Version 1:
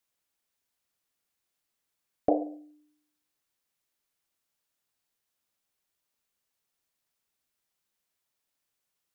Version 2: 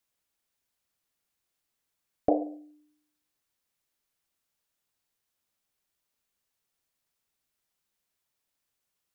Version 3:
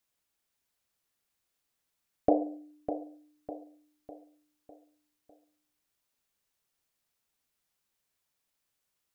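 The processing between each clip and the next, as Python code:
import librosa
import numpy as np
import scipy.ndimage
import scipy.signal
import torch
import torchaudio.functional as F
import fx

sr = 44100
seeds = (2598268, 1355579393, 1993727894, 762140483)

y1 = fx.low_shelf(x, sr, hz=130.0, db=4.0)
y2 = fx.echo_feedback(y1, sr, ms=602, feedback_pct=46, wet_db=-10)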